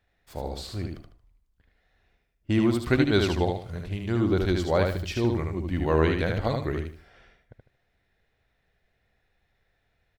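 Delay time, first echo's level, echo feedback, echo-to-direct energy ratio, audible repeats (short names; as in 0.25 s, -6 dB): 76 ms, -4.0 dB, 28%, -3.5 dB, 3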